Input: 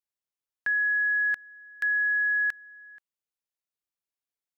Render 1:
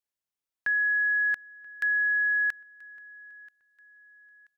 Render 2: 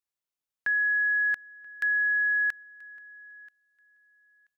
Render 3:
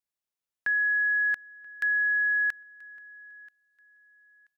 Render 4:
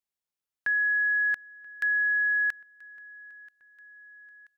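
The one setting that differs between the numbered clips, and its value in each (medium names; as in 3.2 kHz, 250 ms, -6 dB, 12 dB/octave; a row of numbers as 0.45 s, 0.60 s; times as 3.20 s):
feedback delay, feedback: 40%, 17%, 26%, 63%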